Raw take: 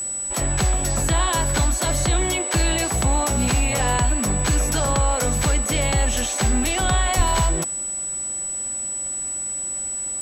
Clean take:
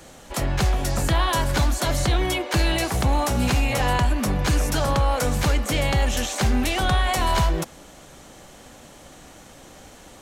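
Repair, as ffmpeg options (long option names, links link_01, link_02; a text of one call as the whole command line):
ffmpeg -i in.wav -filter_complex "[0:a]bandreject=frequency=7900:width=30,asplit=3[link_01][link_02][link_03];[link_01]afade=type=out:start_time=7.16:duration=0.02[link_04];[link_02]highpass=frequency=140:width=0.5412,highpass=frequency=140:width=1.3066,afade=type=in:start_time=7.16:duration=0.02,afade=type=out:start_time=7.28:duration=0.02[link_05];[link_03]afade=type=in:start_time=7.28:duration=0.02[link_06];[link_04][link_05][link_06]amix=inputs=3:normalize=0" out.wav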